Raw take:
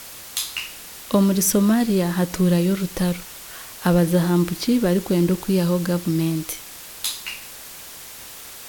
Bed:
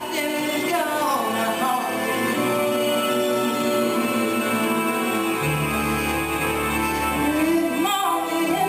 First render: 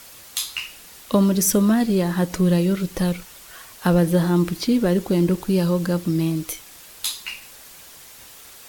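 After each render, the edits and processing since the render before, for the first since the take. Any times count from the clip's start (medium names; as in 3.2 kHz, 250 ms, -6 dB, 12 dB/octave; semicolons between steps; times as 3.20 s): noise reduction 6 dB, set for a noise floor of -39 dBFS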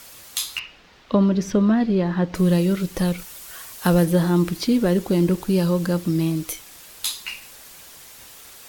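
0.59–2.35 s: distance through air 220 m; 3.17–4.04 s: treble shelf 7.8 kHz -> 4.3 kHz +6.5 dB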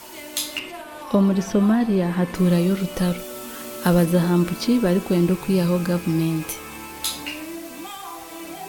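add bed -14.5 dB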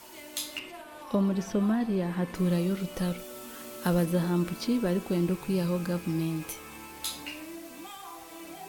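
trim -8.5 dB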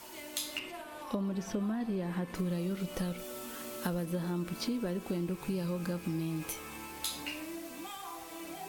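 compression 6:1, threshold -31 dBFS, peak gain reduction 10 dB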